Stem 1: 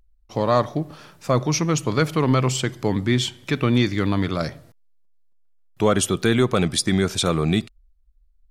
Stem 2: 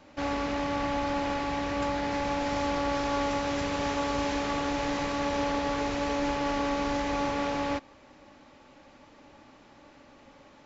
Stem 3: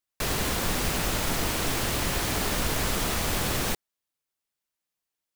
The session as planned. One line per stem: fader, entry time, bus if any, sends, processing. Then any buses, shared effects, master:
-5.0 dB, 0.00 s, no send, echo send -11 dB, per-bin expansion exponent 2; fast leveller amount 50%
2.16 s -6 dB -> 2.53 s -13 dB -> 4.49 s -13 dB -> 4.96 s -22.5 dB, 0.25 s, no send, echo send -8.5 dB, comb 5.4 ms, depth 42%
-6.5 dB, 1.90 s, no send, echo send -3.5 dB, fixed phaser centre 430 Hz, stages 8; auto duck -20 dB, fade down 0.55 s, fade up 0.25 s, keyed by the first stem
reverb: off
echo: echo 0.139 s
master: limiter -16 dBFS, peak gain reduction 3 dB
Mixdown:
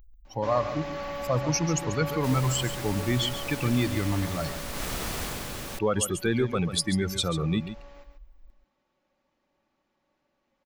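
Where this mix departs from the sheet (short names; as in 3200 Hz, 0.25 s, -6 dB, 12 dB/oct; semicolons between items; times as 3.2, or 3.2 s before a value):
stem 3: missing fixed phaser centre 430 Hz, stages 8; master: missing limiter -16 dBFS, peak gain reduction 3 dB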